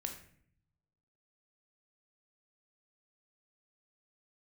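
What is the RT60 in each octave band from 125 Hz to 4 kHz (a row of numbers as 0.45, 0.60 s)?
1.4, 0.95, 0.65, 0.50, 0.60, 0.45 s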